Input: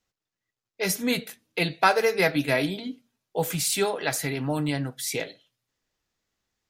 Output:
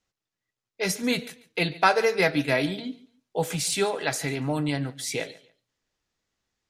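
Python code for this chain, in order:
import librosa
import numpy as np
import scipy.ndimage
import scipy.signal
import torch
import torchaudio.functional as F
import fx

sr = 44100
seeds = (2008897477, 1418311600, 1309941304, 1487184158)

p1 = scipy.signal.sosfilt(scipy.signal.butter(2, 9600.0, 'lowpass', fs=sr, output='sos'), x)
y = p1 + fx.echo_feedback(p1, sr, ms=142, feedback_pct=24, wet_db=-20, dry=0)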